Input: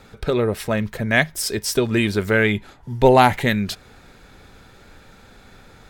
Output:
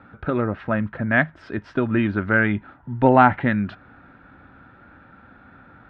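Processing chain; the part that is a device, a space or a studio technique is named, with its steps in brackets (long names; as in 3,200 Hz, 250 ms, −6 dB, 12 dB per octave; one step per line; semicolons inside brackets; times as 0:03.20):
bass cabinet (loudspeaker in its box 69–2,300 Hz, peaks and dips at 280 Hz +7 dB, 430 Hz −10 dB, 1,400 Hz +7 dB, 2,200 Hz −6 dB)
level −1 dB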